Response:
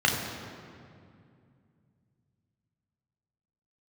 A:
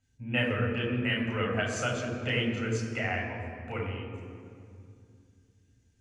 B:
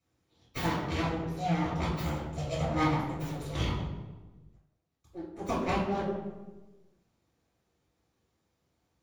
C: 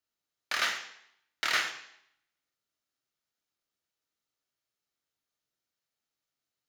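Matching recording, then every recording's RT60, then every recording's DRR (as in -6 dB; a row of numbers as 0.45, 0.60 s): A; 2.4, 1.2, 0.70 s; -1.0, -9.0, 4.5 dB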